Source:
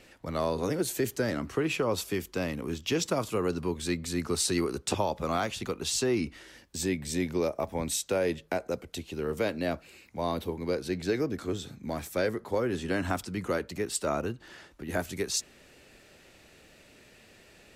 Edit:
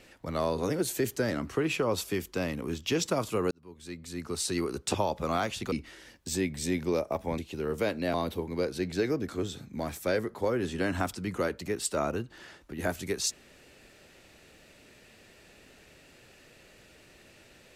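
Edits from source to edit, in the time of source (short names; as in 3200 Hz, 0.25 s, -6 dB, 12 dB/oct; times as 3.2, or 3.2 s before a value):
3.51–4.94 fade in
5.72–6.2 cut
7.86–8.97 cut
9.73–10.24 cut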